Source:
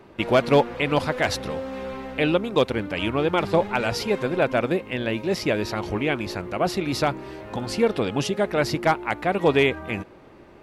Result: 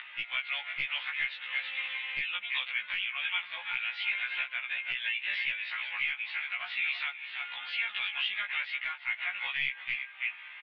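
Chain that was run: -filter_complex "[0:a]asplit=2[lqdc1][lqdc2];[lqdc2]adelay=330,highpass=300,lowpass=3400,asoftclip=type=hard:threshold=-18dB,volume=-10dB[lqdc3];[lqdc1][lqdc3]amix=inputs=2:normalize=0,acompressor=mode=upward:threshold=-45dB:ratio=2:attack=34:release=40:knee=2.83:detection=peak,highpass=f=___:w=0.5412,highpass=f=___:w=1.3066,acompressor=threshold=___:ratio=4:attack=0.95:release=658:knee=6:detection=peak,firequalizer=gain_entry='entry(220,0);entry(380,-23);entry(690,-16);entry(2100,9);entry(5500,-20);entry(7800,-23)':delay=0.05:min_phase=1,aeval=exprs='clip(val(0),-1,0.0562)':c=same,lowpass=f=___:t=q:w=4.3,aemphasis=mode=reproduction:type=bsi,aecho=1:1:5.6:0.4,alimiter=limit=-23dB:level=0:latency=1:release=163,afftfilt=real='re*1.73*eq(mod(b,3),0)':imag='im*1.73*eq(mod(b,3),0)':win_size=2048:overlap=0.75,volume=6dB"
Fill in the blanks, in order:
860, 860, -33dB, 3400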